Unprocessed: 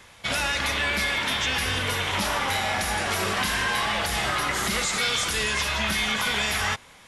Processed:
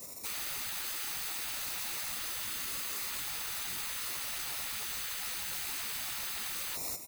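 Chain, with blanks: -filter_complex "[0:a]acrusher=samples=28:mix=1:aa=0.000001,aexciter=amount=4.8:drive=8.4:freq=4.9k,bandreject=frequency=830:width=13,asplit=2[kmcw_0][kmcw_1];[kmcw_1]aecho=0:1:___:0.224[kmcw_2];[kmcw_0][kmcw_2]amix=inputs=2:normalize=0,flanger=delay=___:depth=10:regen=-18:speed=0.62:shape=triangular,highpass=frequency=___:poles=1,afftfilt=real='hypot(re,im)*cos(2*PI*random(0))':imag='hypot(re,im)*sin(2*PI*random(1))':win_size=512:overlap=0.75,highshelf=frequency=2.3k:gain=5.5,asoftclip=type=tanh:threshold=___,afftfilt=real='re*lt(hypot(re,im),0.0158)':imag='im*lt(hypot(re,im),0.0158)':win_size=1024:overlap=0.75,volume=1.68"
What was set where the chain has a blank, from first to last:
197, 5.8, 180, 0.0501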